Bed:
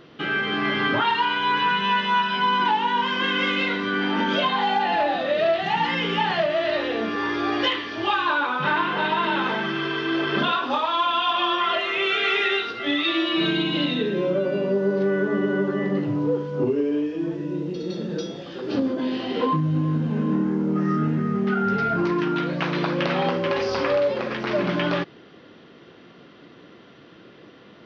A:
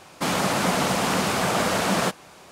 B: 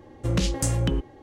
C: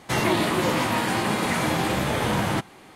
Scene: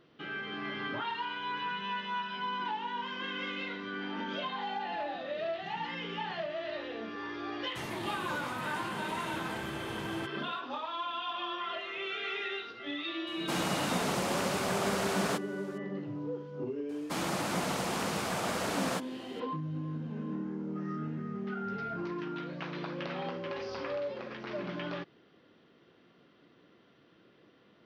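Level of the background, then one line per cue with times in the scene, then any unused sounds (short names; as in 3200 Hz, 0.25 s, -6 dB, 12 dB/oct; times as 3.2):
bed -14.5 dB
7.66 add C -17 dB
13.27 add A -9.5 dB
16.89 add A -10.5 dB
not used: B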